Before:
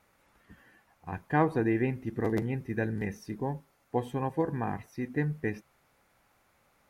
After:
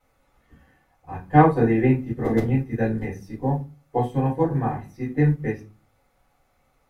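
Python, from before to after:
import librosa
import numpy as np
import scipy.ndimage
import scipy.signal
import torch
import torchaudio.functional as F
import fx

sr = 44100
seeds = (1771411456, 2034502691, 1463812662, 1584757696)

y = fx.room_shoebox(x, sr, seeds[0], volume_m3=120.0, walls='furnished', distance_m=5.0)
y = fx.upward_expand(y, sr, threshold_db=-28.0, expansion=1.5)
y = y * librosa.db_to_amplitude(-1.0)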